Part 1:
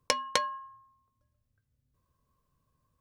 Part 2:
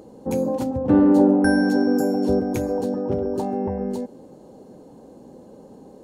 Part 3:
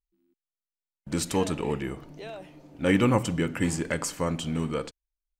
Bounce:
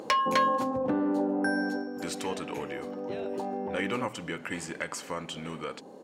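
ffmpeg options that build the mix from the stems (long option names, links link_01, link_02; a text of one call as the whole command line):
ffmpeg -i stem1.wav -i stem2.wav -i stem3.wav -filter_complex "[0:a]asplit=2[link_01][link_02];[link_02]highpass=frequency=720:poles=1,volume=26dB,asoftclip=type=tanh:threshold=-6dB[link_03];[link_01][link_03]amix=inputs=2:normalize=0,lowpass=frequency=2500:poles=1,volume=-6dB,volume=-6dB[link_04];[1:a]highpass=150,acompressor=threshold=-24dB:ratio=2.5,volume=7dB,afade=type=out:start_time=1.6:duration=0.3:silence=0.237137,afade=type=in:start_time=2.84:duration=0.51:silence=0.446684[link_05];[2:a]highpass=frequency=220:poles=1,adelay=900,volume=-6.5dB[link_06];[link_04][link_05][link_06]amix=inputs=3:normalize=0,equalizer=frequency=1800:width=0.34:gain=8.5,acompressor=threshold=-37dB:ratio=1.5" out.wav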